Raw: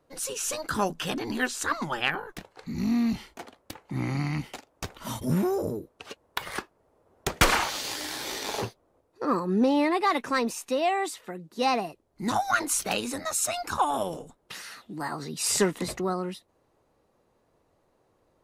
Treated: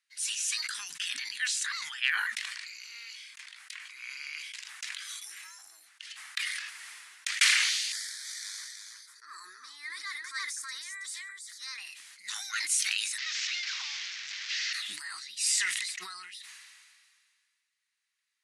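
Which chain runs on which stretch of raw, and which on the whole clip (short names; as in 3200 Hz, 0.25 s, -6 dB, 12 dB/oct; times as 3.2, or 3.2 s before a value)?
2.26–6.41 bell 200 Hz -14.5 dB 0.53 oct + frequency shift +210 Hz
7.92–11.78 fixed phaser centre 740 Hz, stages 6 + echo 0.325 s -5.5 dB
13.18–14.73 delta modulation 32 kbps, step -24 dBFS + HPF 60 Hz
whole clip: elliptic band-pass 1900–10000 Hz, stop band 50 dB; sustainer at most 29 dB/s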